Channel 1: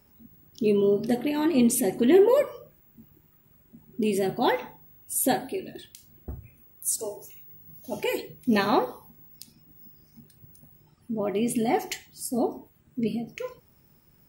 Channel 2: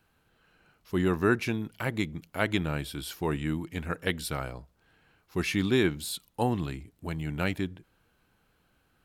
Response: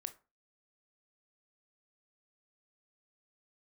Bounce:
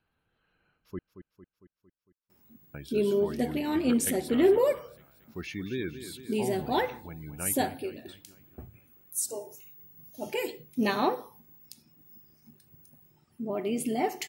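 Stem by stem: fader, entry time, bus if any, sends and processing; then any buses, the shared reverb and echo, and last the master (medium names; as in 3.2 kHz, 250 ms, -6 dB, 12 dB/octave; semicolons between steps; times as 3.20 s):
-3.5 dB, 2.30 s, no send, no echo send, high-pass 130 Hz 6 dB/octave
-9.0 dB, 0.00 s, muted 0.99–2.74 s, no send, echo send -11 dB, spectral gate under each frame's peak -25 dB strong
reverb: none
echo: feedback delay 227 ms, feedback 57%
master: none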